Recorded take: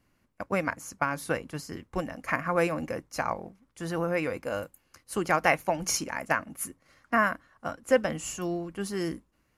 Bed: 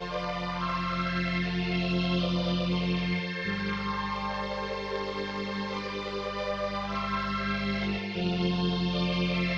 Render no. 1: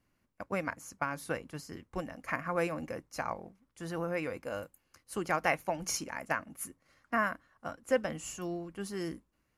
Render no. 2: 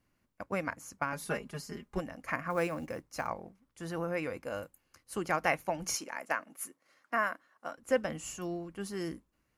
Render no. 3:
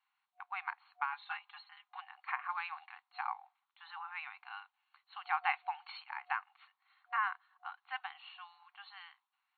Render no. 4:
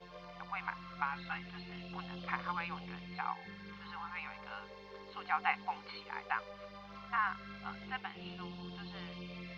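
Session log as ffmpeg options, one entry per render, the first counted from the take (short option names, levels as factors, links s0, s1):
-af "volume=0.501"
-filter_complex "[0:a]asettb=1/sr,asplit=3[s0][s1][s2];[s0]atrim=end=1.124[s3];[s1]atrim=start=1.12:end=1.99,asetpts=PTS-STARTPTS,afade=t=in:d=0.004:c=qsin,afade=t=out:st=0.866:d=0.004:c=qsin,aecho=1:1:4.9:0.94,atrim=end_sample=38367[s4];[s2]atrim=start=1.986[s5];[s3][s4]acrossfade=d=0.004:c1=hsin:c2=qsin[s6];[s6][s5]acrossfade=d=0.004:c1=qsin:c2=hsin,asettb=1/sr,asplit=3[s7][s8][s9];[s7]atrim=end=2.504[s10];[s8]atrim=start=2.5:end=3.28,asetpts=PTS-STARTPTS,afade=t=in:d=0.004:c=qsin,afade=t=out:st=0.776:d=0.004:c=qsin,acrusher=bits=7:mode=log:mix=0:aa=0.000001[s11];[s9]atrim=start=3.276[s12];[s10][s11]acrossfade=d=0.004:c1=hsin:c2=qsin[s13];[s13][s12]acrossfade=d=0.004:c1=qsin:c2=hsin,asettb=1/sr,asplit=3[s14][s15][s16];[s14]atrim=end=5.944[s17];[s15]atrim=start=5.94:end=7.78,asetpts=PTS-STARTPTS,afade=t=in:d=0.004:c=qsin,afade=t=out:st=1.836:d=0.004:c=qsin,highpass=320[s18];[s16]atrim=start=7.776[s19];[s17][s18]acrossfade=d=0.004:c1=hsin:c2=qsin[s20];[s20][s19]acrossfade=d=0.004:c1=qsin:c2=hsin"
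-af "afftfilt=real='re*between(b*sr/4096,730,4400)':imag='im*between(b*sr/4096,730,4400)':win_size=4096:overlap=0.75,equalizer=f=1800:t=o:w=0.58:g=-5"
-filter_complex "[1:a]volume=0.112[s0];[0:a][s0]amix=inputs=2:normalize=0"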